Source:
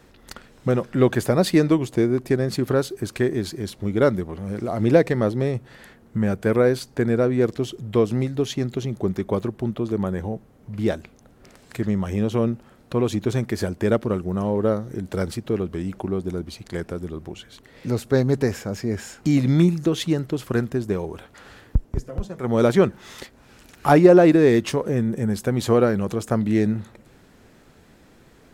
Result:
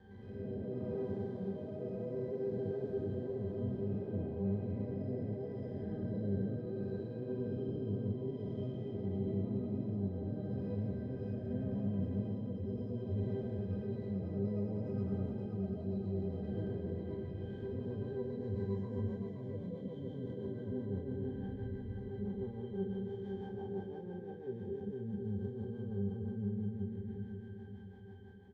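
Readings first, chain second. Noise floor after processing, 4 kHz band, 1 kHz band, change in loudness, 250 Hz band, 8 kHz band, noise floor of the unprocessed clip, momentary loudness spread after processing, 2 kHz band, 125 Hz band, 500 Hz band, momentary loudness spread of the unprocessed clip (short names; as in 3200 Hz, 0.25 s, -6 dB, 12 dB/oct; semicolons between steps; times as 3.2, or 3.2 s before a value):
-47 dBFS, under -25 dB, -26.0 dB, -17.5 dB, -16.5 dB, under -40 dB, -53 dBFS, 6 LU, under -25 dB, -13.5 dB, -18.5 dB, 13 LU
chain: time blur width 0.585 s; dynamic EQ 1700 Hz, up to -6 dB, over -50 dBFS, Q 1.7; compressor 5:1, threshold -38 dBFS, peak gain reduction 20.5 dB; rotary speaker horn 0.65 Hz, later 6 Hz, at 17.25; octave resonator G, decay 0.15 s; echoes that change speed 0.109 s, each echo +4 st, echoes 2, each echo -6 dB; feedback echo 0.52 s, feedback 40%, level -7 dB; gain +9 dB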